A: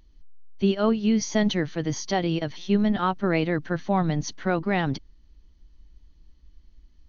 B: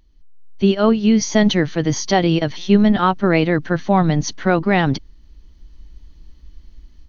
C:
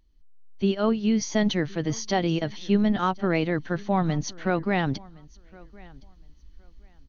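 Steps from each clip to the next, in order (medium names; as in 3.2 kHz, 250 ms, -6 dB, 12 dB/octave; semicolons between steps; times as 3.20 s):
level rider gain up to 11 dB
feedback delay 1065 ms, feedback 20%, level -24 dB; trim -8.5 dB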